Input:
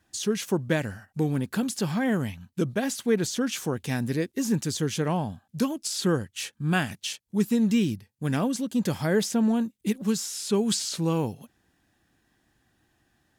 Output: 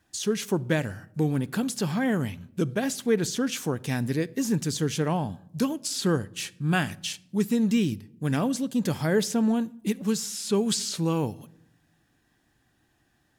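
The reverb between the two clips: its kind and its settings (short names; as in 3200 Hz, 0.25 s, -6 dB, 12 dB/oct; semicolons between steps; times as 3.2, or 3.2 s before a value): shoebox room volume 2000 m³, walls furnished, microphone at 0.34 m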